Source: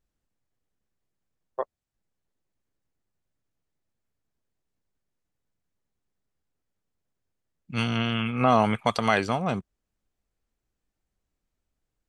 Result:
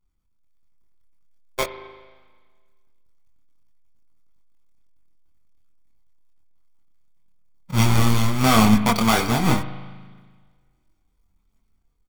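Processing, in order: half-waves squared off; comb 0.9 ms, depth 50%; AGC gain up to 6.5 dB; spring tank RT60 1.6 s, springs 38 ms, chirp 25 ms, DRR 10.5 dB; chorus voices 6, 0.18 Hz, delay 25 ms, depth 3.2 ms

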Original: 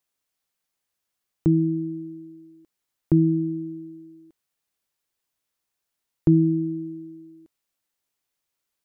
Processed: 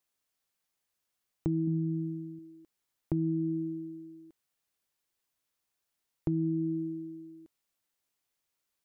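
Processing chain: 1.67–2.39 bell 170 Hz +9.5 dB 0.57 oct; limiter -15 dBFS, peak gain reduction 6.5 dB; compressor, threshold -25 dBFS, peak gain reduction 7 dB; gain -2 dB

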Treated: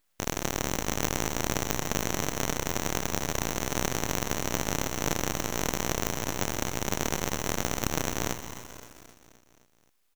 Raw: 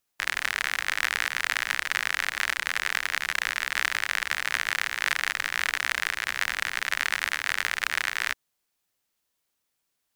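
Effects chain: elliptic high-pass 2900 Hz, stop band 60 dB; bell 15000 Hz +8 dB 0.29 oct; full-wave rectifier; on a send: feedback echo 0.261 s, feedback 59%, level -14.5 dB; on the sum: lo-fi delay 0.131 s, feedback 80%, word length 7-bit, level -14 dB; gain +5.5 dB

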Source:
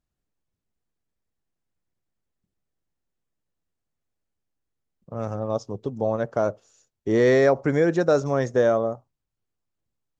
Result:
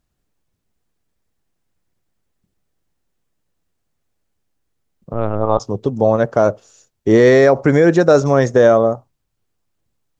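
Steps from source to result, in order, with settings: 5.43–5.66 spectral gain 700–1500 Hz +7 dB; 5.13–5.6 LPC vocoder at 8 kHz pitch kept; maximiser +11.5 dB; gain -1 dB

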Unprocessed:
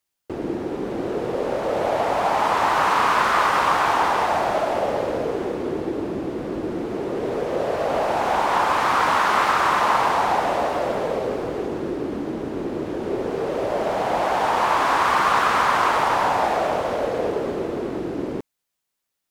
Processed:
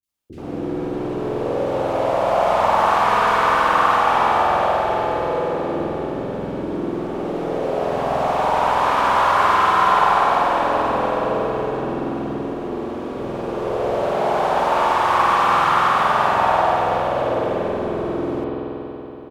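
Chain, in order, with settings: three bands offset in time lows, highs, mids 30/80 ms, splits 350/2200 Hz; spring tank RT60 3.8 s, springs 47 ms, chirp 75 ms, DRR -6.5 dB; gain -3.5 dB

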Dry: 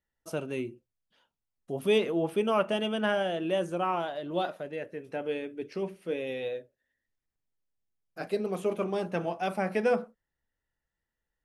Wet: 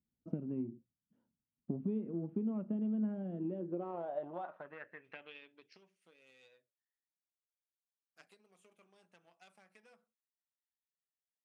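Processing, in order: tone controls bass +14 dB, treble -14 dB; in parallel at -4 dB: soft clip -21.5 dBFS, distortion -13 dB; on the sum: compressor 5:1, threshold -31 dBFS, peak gain reduction 14.5 dB; added harmonics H 3 -14 dB, 8 -43 dB, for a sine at -20.5 dBFS; band-pass sweep 240 Hz -> 8000 Hz, 3.4–6.07; gain +5 dB

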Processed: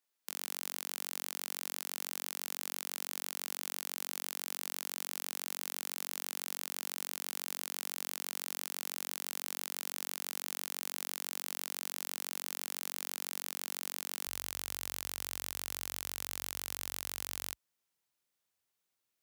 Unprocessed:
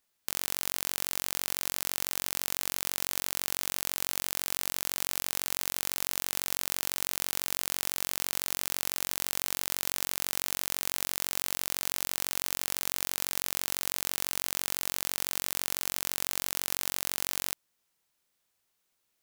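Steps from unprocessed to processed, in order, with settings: HPF 220 Hz 24 dB/oct, from 14.27 s 53 Hz; gain -7.5 dB

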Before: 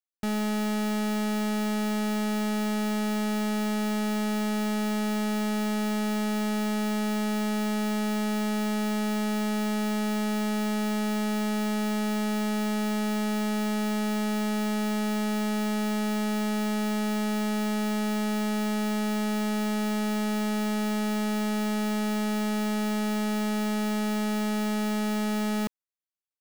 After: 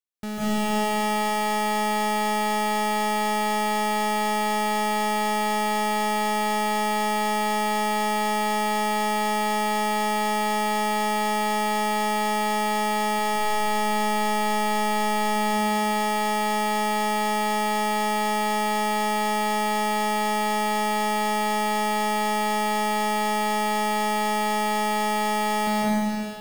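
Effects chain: 13.19–15.36 low shelf 80 Hz +7 dB; reverb RT60 3.1 s, pre-delay 0.139 s, DRR -9 dB; gain -3 dB

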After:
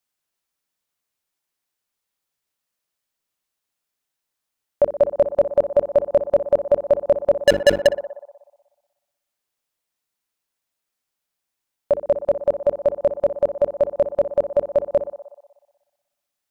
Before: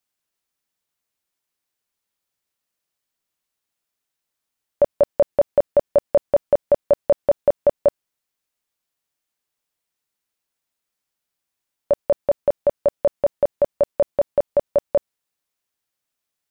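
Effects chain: notches 50/100/150/200/250/300/350/400/450 Hz; 7.46–7.87 sample leveller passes 5; narrowing echo 61 ms, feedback 75%, band-pass 800 Hz, level -10.5 dB

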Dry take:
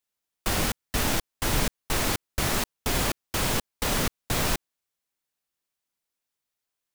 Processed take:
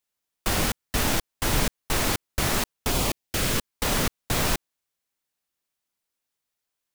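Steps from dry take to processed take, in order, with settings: 2.9–3.72 bell 2000 Hz -> 600 Hz -13 dB 0.33 oct; gain +1.5 dB

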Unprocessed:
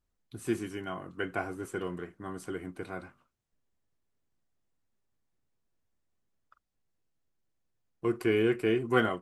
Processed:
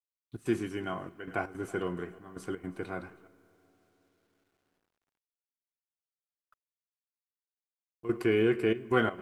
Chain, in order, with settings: high shelf 6300 Hz -7 dB; multi-head echo 0.108 s, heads first and third, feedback 57%, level -23 dB; expander -55 dBFS; in parallel at +1 dB: limiter -20.5 dBFS, peak gain reduction 8 dB; on the sum: step gate "..xx.xxxxxxx" 165 bpm -12 dB; on a send at -22 dB: reverb RT60 4.9 s, pre-delay 47 ms; on the sum: bit-crush 12-bit; gain -4.5 dB

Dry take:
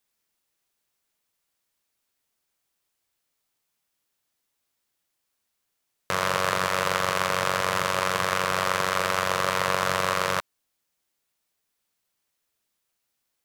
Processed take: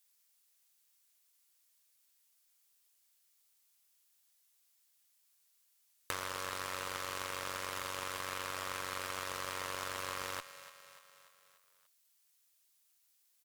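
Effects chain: overdrive pedal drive 11 dB, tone 7600 Hz, clips at -4.5 dBFS; pre-emphasis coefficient 0.8; compressor 10:1, threshold -34 dBFS, peak gain reduction 9.5 dB; on a send: feedback echo 0.293 s, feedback 55%, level -14.5 dB; on the sum: added harmonics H 3 -19 dB, 4 -18 dB, 5 -20 dB, 8 -23 dB, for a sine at -12 dBFS

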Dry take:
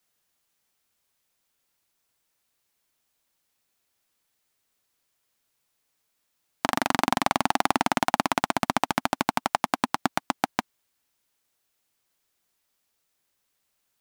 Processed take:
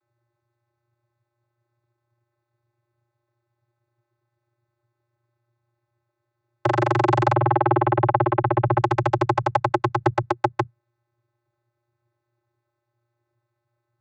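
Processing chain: Wiener smoothing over 15 samples; soft clip -3 dBFS, distortion -20 dB; vocoder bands 16, square 118 Hz; 7.33–8.78 Gaussian blur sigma 3.3 samples; gain +7.5 dB

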